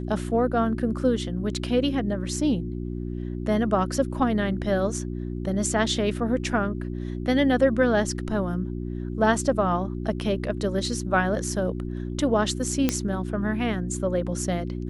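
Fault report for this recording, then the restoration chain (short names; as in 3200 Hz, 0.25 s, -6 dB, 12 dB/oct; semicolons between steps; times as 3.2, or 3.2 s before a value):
hum 60 Hz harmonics 6 -31 dBFS
12.89 pop -7 dBFS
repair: de-click; de-hum 60 Hz, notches 6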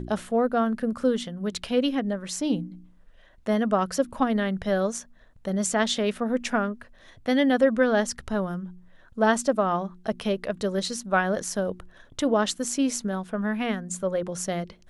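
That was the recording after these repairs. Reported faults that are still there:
none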